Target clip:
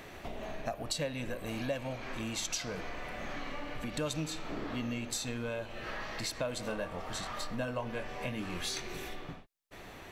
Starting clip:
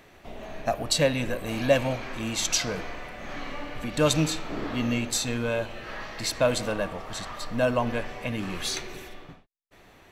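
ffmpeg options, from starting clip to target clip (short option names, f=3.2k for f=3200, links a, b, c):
-filter_complex "[0:a]acompressor=threshold=-44dB:ratio=3,asettb=1/sr,asplit=3[a][b][c];[a]atrim=end=6.634[d];[b]atrim=start=6.63:end=9.21,asetpts=PTS-STARTPTS,afade=t=in:d=0.004:c=qsin,afade=t=out:st=2.576:d=0.004:c=qsin,asplit=2[e][f];[f]adelay=23,volume=-6.5dB[g];[e][g]amix=inputs=2:normalize=0,atrim=end_sample=113778[h];[c]atrim=start=9.206[i];[d][h]acrossfade=d=0.004:c1=hsin:c2=qsin[j];[j][i]acrossfade=d=0.004:c1=qsin:c2=hsin,volume=5dB"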